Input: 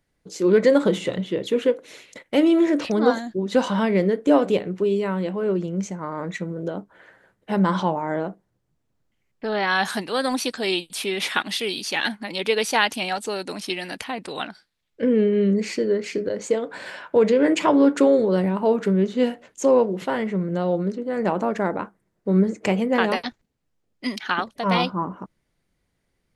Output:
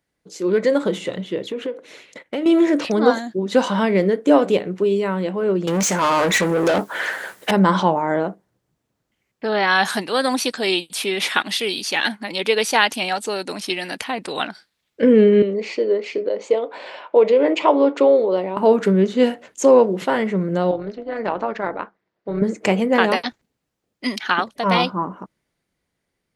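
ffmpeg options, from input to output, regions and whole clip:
ffmpeg -i in.wav -filter_complex "[0:a]asettb=1/sr,asplit=3[link_01][link_02][link_03];[link_01]atrim=end=1.464[link_04];[link_02]atrim=start=1.46:end=2.46,asetpts=PTS-STARTPTS,afade=type=in:duration=0.004:curve=qsin,afade=type=out:start_time=0.996:duration=0.004:curve=qsin,highshelf=frequency=5700:gain=-9.5,acompressor=threshold=-24dB:ratio=5:attack=3.2:release=140:knee=1:detection=peak[link_05];[link_03]atrim=start=2.456[link_06];[link_04][link_05]acrossfade=duration=0.004:curve1=hsin:curve2=qsin[link_07];[link_07][link_06]acrossfade=duration=0.004:curve1=qsin:curve2=hsin,asettb=1/sr,asplit=3[link_08][link_09][link_10];[link_08]atrim=end=5.674[link_11];[link_09]atrim=start=5.67:end=7.51,asetpts=PTS-STARTPTS,afade=type=in:duration=0.004:curve=qsin,afade=type=out:start_time=1.836:duration=0.004:curve=qsin,aemphasis=mode=production:type=75fm,asplit=2[link_12][link_13];[link_13]highpass=frequency=720:poles=1,volume=27dB,asoftclip=type=tanh:threshold=-15dB[link_14];[link_12][link_14]amix=inputs=2:normalize=0,lowpass=frequency=4800:poles=1,volume=-6dB[link_15];[link_10]atrim=start=7.506[link_16];[link_11][link_15]acrossfade=duration=0.004:curve1=hsin:curve2=qsin[link_17];[link_17][link_16]acrossfade=duration=0.004:curve1=qsin:curve2=hsin,asettb=1/sr,asplit=3[link_18][link_19][link_20];[link_18]atrim=end=15.424[link_21];[link_19]atrim=start=15.42:end=18.57,asetpts=PTS-STARTPTS,afade=type=in:duration=0.004:curve=qsin,afade=type=out:start_time=3.146:duration=0.004:curve=qsin,highpass=460,lowpass=2900,equalizer=frequency=1600:width=2.1:gain=-13[link_22];[link_20]atrim=start=18.566[link_23];[link_21][link_22]acrossfade=duration=0.004:curve1=hsin:curve2=qsin[link_24];[link_24][link_23]acrossfade=duration=0.004:curve1=qsin:curve2=hsin,asettb=1/sr,asplit=3[link_25][link_26][link_27];[link_25]atrim=end=20.714[link_28];[link_26]atrim=start=20.71:end=22.42,asetpts=PTS-STARTPTS,afade=type=in:duration=0.004:curve=qsin,afade=type=out:start_time=1.706:duration=0.004:curve=qsin,lowpass=frequency=4900:width=0.5412,lowpass=frequency=4900:width=1.3066,lowshelf=frequency=290:gain=-11.5,tremolo=f=220:d=0.571[link_29];[link_27]atrim=start=22.416[link_30];[link_28][link_29]acrossfade=duration=0.004:curve1=hsin:curve2=qsin[link_31];[link_31][link_30]acrossfade=duration=0.004:curve1=qsin:curve2=hsin,highpass=43,equalizer=frequency=65:width_type=o:width=2.8:gain=-6,dynaudnorm=framelen=180:gausssize=17:maxgain=11.5dB,volume=-1dB" out.wav

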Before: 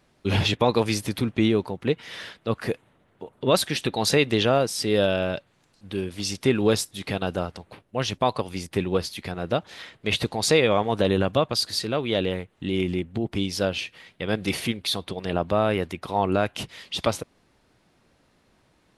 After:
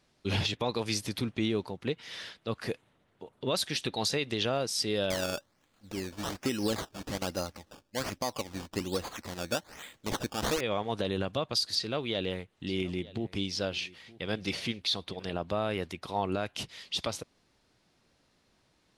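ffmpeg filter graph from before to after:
ffmpeg -i in.wav -filter_complex "[0:a]asettb=1/sr,asplit=3[link_01][link_02][link_03];[link_01]atrim=end=5.104[link_04];[link_02]atrim=start=5.1:end=10.61,asetpts=PTS-STARTPTS,afade=type=in:duration=0.004:curve=qsin,afade=type=out:start_time=5.506:duration=0.004:curve=qsin,aecho=1:1:3.6:0.38,atrim=end_sample=242991,acrusher=samples=15:mix=1:aa=0.000001:lfo=1:lforange=15:lforate=1.2[link_05];[link_03]atrim=start=10.606[link_06];[link_04][link_05]acrossfade=duration=0.004:curve1=hsin:curve2=qsin[link_07];[link_07][link_06]acrossfade=duration=0.004:curve1=qsin:curve2=hsin,asettb=1/sr,asplit=3[link_08][link_09][link_10];[link_08]atrim=end=11.754[link_11];[link_09]atrim=start=11.75:end=15.23,asetpts=PTS-STARTPTS,afade=type=in:duration=0.004:curve=qsin,afade=type=out:start_time=3.476:duration=0.004:curve=qsin,acrossover=split=6500[link_12][link_13];[link_13]acompressor=threshold=-51dB:ratio=4:attack=1:release=60[link_14];[link_12][link_14]amix=inputs=2:normalize=0,aecho=1:1:919:0.0891,atrim=end_sample=153468[link_15];[link_10]atrim=start=15.226[link_16];[link_11][link_15]acrossfade=duration=0.004:curve1=hsin:curve2=qsin[link_17];[link_17][link_16]acrossfade=duration=0.004:curve1=qsin:curve2=hsin,equalizer=frequency=5100:width_type=o:width=1.5:gain=7,alimiter=limit=-10.5dB:level=0:latency=1:release=167,volume=-7.5dB" out.wav

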